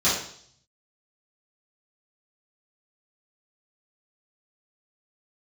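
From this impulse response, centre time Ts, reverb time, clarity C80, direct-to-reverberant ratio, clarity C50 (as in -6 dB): 47 ms, 0.60 s, 7.0 dB, -11.0 dB, 2.5 dB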